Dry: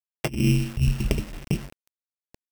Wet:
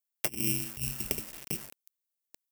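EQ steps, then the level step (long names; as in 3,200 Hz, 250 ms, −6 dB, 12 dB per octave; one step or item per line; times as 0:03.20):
RIAA equalisation recording
dynamic equaliser 3,600 Hz, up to −6 dB, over −41 dBFS, Q 0.9
−6.5 dB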